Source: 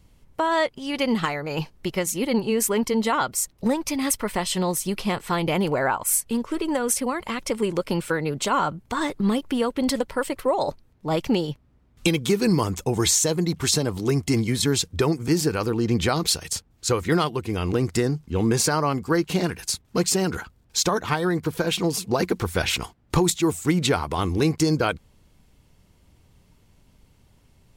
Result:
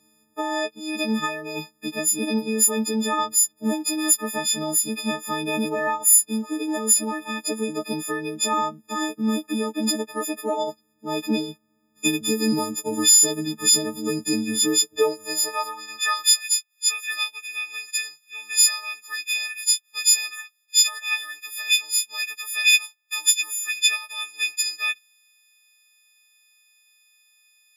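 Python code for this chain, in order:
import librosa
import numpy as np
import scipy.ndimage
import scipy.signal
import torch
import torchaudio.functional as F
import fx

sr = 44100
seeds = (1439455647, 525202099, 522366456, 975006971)

y = fx.freq_snap(x, sr, grid_st=6)
y = fx.filter_sweep_highpass(y, sr, from_hz=250.0, to_hz=2400.0, start_s=14.54, end_s=16.55, q=3.1)
y = y * librosa.db_to_amplitude(-7.5)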